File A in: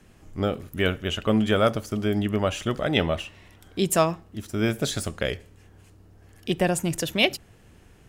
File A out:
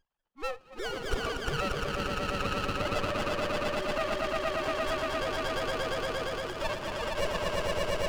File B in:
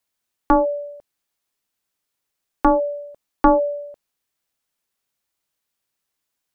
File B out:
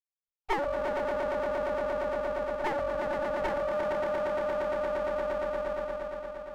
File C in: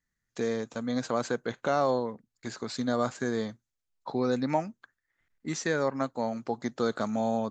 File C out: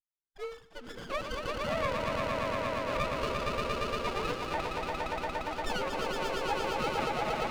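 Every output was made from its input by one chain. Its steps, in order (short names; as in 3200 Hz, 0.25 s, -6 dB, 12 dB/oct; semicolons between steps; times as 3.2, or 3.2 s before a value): sine-wave speech; bell 2300 Hz -9 dB 0.23 oct; swelling echo 0.116 s, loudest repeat 5, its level -4 dB; limiter -17 dBFS; spectral noise reduction 21 dB; HPF 1300 Hz 12 dB/oct; running maximum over 17 samples; gain +7 dB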